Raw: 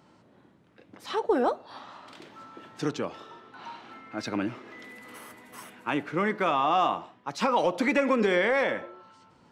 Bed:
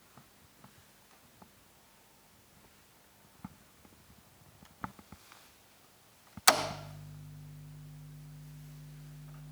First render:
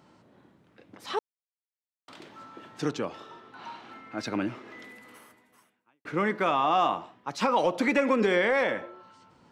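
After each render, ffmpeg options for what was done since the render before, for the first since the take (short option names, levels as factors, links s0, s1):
-filter_complex "[0:a]asplit=4[s0][s1][s2][s3];[s0]atrim=end=1.19,asetpts=PTS-STARTPTS,afade=t=out:st=1.186:d=0.004:c=hsin[s4];[s1]atrim=start=1.19:end=2.08,asetpts=PTS-STARTPTS,volume=0[s5];[s2]atrim=start=2.08:end=6.05,asetpts=PTS-STARTPTS,afade=t=in:d=0.004:c=hsin,afade=t=out:st=2.71:d=1.26:c=qua[s6];[s3]atrim=start=6.05,asetpts=PTS-STARTPTS,afade=t=in:d=0.004:c=hsin[s7];[s4][s5][s6][s7]concat=n=4:v=0:a=1"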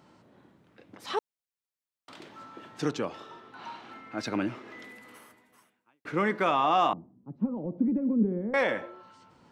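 -filter_complex "[0:a]asettb=1/sr,asplit=3[s0][s1][s2];[s0]atrim=end=6.934[s3];[s1]atrim=start=6.93:end=8.54,asetpts=PTS-STARTPTS,afade=t=in:d=0.004:c=qsin,afade=t=out:st=1.606:d=0.004:c=qsin,lowpass=f=220:t=q:w=1.7[s4];[s2]atrim=start=8.536[s5];[s3][s4]acrossfade=d=0.004:c1=hsin:c2=qsin[s6];[s6][s5]acrossfade=d=0.004:c1=qsin:c2=hsin"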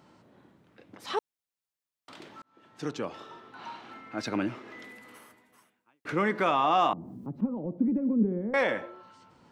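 -filter_complex "[0:a]asettb=1/sr,asplit=3[s0][s1][s2];[s0]atrim=end=6.094[s3];[s1]atrim=start=6.09:end=7.41,asetpts=PTS-STARTPTS,afade=t=in:d=0.004:c=qsin,afade=t=out:st=1.316:d=0.004:c=qsin,acompressor=mode=upward:threshold=0.0447:ratio=2.5:attack=3.2:release=140:knee=2.83:detection=peak[s4];[s2]atrim=start=7.406[s5];[s3][s4]acrossfade=d=0.004:c1=hsin:c2=qsin[s6];[s6][s5]acrossfade=d=0.004:c1=qsin:c2=hsin,asplit=2[s7][s8];[s7]atrim=end=2.42,asetpts=PTS-STARTPTS,afade=t=out:st=2.416:d=0.004:c=hsin[s9];[s8]atrim=start=2.42,asetpts=PTS-STARTPTS,afade=t=in:d=0.78[s10];[s9][s10]concat=n=2:v=0:a=1"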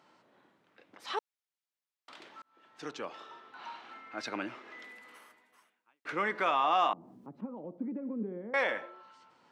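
-af "highpass=f=870:p=1,highshelf=f=6900:g=-10"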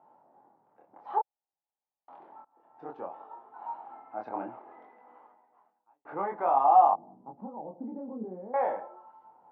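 -af "flanger=delay=20:depth=6.8:speed=0.58,lowpass=f=820:t=q:w=6.1"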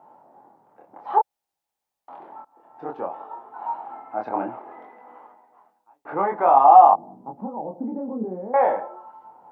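-af "volume=2.99,alimiter=limit=0.794:level=0:latency=1"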